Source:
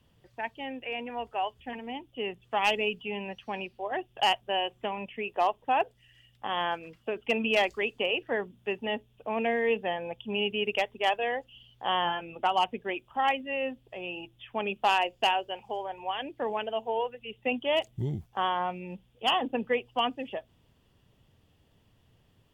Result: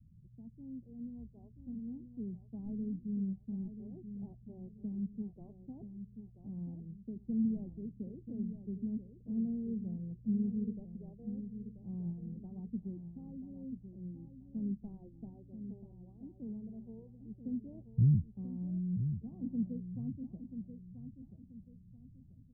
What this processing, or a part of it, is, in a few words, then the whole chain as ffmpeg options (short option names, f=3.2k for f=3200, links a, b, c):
the neighbour's flat through the wall: -filter_complex "[0:a]asettb=1/sr,asplit=3[a][b][c];[a]atrim=end=1.594[d];[b]atrim=start=1.59:end=2.74,asetpts=PTS-STARTPTS,afade=t=in:d=0.004:c=qsin,afade=t=out:st=1.146:d=0.004:c=qsin,equalizer=f=1.2k:t=o:w=2.8:g=3.5[e];[c]atrim=start=2.736[f];[d][e]acrossfade=d=0.004:c1=hsin:c2=qsin[g];[g][f]acrossfade=d=0.004:c1=qsin:c2=hsin,lowpass=f=190:w=0.5412,lowpass=f=190:w=1.3066,equalizer=f=190:t=o:w=0.77:g=4,asplit=2[h][i];[i]adelay=984,lowpass=f=2k:p=1,volume=-9dB,asplit=2[j][k];[k]adelay=984,lowpass=f=2k:p=1,volume=0.34,asplit=2[l][m];[m]adelay=984,lowpass=f=2k:p=1,volume=0.34,asplit=2[n][o];[o]adelay=984,lowpass=f=2k:p=1,volume=0.34[p];[h][j][l][n][p]amix=inputs=5:normalize=0,volume=5.5dB"